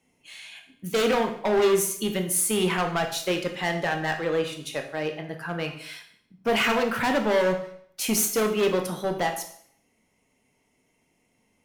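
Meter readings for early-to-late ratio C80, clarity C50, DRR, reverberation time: 12.0 dB, 8.5 dB, 4.0 dB, 0.60 s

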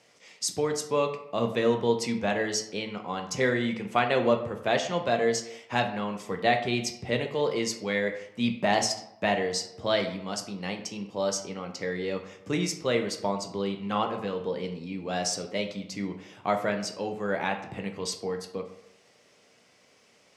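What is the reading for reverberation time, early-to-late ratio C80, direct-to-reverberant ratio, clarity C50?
0.80 s, 12.0 dB, 4.5 dB, 9.5 dB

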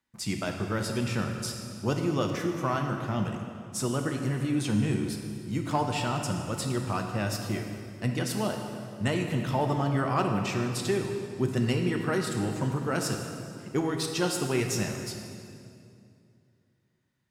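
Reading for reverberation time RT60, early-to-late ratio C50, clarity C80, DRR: 2.4 s, 4.5 dB, 5.5 dB, 3.0 dB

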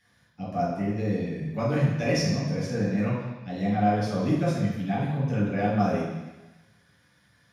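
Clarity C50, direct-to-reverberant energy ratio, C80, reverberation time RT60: 0.5 dB, -6.5 dB, 3.5 dB, 1.1 s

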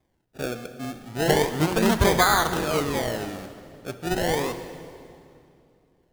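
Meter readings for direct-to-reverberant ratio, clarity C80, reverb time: 9.5 dB, 11.0 dB, 2.6 s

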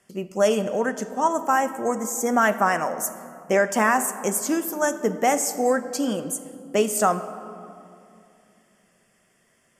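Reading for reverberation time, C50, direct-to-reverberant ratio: 2.6 s, 12.5 dB, 10.0 dB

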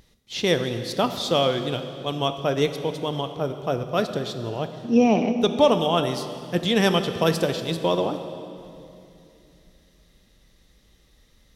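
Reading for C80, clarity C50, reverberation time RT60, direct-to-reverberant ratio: 10.0 dB, 9.0 dB, 2.7 s, 8.0 dB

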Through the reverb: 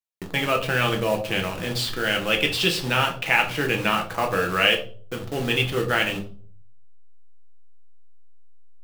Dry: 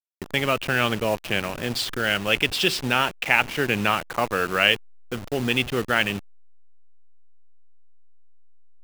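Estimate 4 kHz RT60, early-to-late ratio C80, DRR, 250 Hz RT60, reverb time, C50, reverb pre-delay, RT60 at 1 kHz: 0.35 s, 15.5 dB, 2.0 dB, 0.65 s, 0.45 s, 10.5 dB, 6 ms, 0.40 s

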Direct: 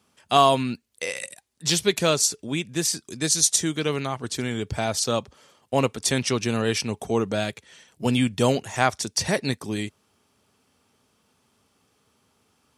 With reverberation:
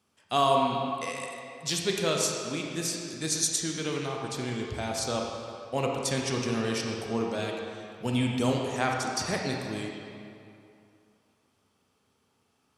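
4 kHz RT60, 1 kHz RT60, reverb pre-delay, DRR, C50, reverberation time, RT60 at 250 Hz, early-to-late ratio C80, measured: 1.8 s, 2.7 s, 27 ms, 0.0 dB, 1.0 dB, 2.6 s, 2.5 s, 2.0 dB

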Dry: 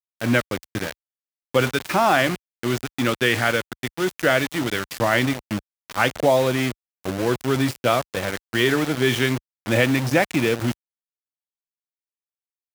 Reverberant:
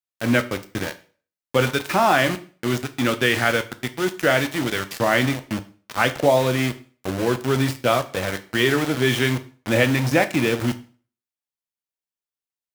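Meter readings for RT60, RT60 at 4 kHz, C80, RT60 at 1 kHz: 0.40 s, 0.40 s, 20.5 dB, 0.40 s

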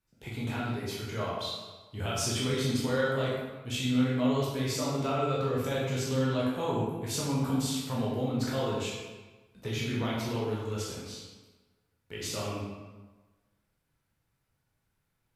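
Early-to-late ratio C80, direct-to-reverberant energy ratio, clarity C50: 2.0 dB, -6.5 dB, -0.5 dB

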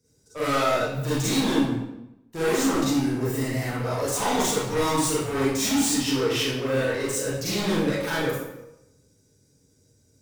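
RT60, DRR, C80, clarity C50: 0.90 s, -10.5 dB, 2.5 dB, -3.0 dB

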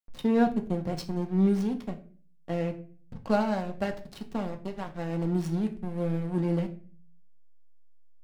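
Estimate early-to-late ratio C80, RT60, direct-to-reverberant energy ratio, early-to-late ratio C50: 17.5 dB, 0.40 s, 3.5 dB, 13.5 dB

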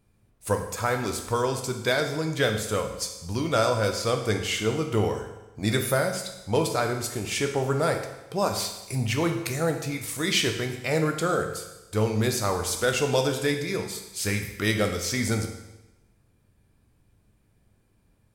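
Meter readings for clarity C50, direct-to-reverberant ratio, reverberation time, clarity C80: 7.0 dB, 4.0 dB, 1.0 s, 9.0 dB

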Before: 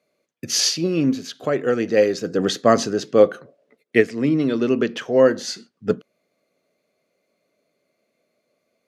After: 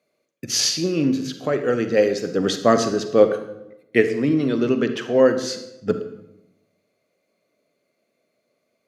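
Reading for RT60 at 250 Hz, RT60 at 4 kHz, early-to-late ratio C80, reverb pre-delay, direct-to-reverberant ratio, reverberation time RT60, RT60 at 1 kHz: 1.1 s, 0.65 s, 12.5 dB, 36 ms, 8.5 dB, 0.85 s, 0.75 s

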